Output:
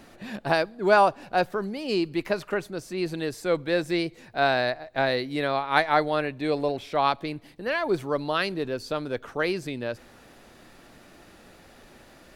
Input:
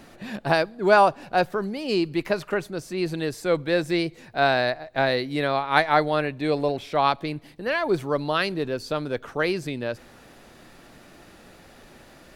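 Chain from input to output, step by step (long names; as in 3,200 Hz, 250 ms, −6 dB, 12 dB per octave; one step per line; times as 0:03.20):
parametric band 150 Hz −3 dB 0.33 octaves
level −2 dB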